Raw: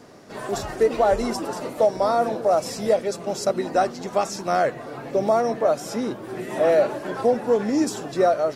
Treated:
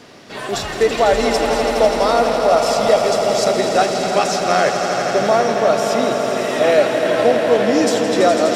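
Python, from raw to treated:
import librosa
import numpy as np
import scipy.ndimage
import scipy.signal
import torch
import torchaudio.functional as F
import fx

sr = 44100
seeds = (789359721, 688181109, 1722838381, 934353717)

p1 = fx.peak_eq(x, sr, hz=3100.0, db=11.0, octaves=1.6)
p2 = p1 + fx.echo_swell(p1, sr, ms=83, loudest=5, wet_db=-9.5, dry=0)
y = p2 * librosa.db_to_amplitude(3.0)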